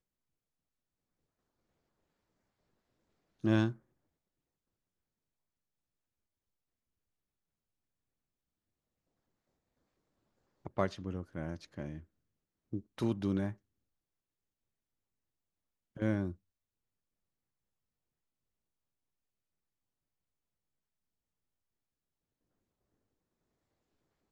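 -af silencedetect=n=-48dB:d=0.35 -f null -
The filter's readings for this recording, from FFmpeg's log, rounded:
silence_start: 0.00
silence_end: 3.44 | silence_duration: 3.44
silence_start: 3.76
silence_end: 10.66 | silence_duration: 6.90
silence_start: 12.00
silence_end: 12.73 | silence_duration: 0.72
silence_start: 13.54
silence_end: 15.97 | silence_duration: 2.43
silence_start: 16.33
silence_end: 24.32 | silence_duration: 7.98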